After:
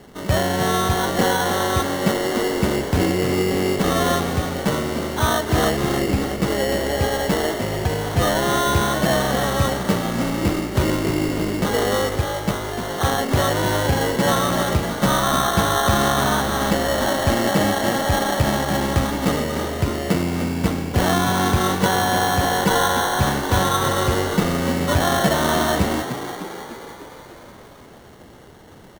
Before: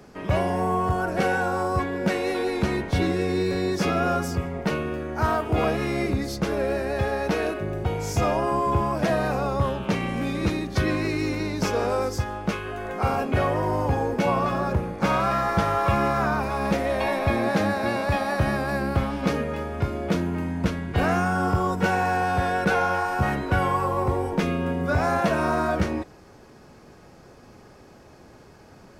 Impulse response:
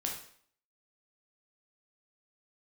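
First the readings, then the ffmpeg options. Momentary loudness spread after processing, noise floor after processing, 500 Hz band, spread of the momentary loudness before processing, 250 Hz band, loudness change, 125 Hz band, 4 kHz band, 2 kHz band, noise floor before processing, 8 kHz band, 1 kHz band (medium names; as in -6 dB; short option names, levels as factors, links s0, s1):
5 LU, -43 dBFS, +4.0 dB, 5 LU, +4.5 dB, +4.5 dB, +4.0 dB, +12.5 dB, +4.0 dB, -49 dBFS, +14.5 dB, +3.5 dB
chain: -filter_complex "[0:a]acrusher=samples=18:mix=1:aa=0.000001,asplit=9[s0][s1][s2][s3][s4][s5][s6][s7][s8];[s1]adelay=300,afreqshift=52,volume=0.335[s9];[s2]adelay=600,afreqshift=104,volume=0.211[s10];[s3]adelay=900,afreqshift=156,volume=0.133[s11];[s4]adelay=1200,afreqshift=208,volume=0.0841[s12];[s5]adelay=1500,afreqshift=260,volume=0.0525[s13];[s6]adelay=1800,afreqshift=312,volume=0.0331[s14];[s7]adelay=2100,afreqshift=364,volume=0.0209[s15];[s8]adelay=2400,afreqshift=416,volume=0.0132[s16];[s0][s9][s10][s11][s12][s13][s14][s15][s16]amix=inputs=9:normalize=0,volume=1.5"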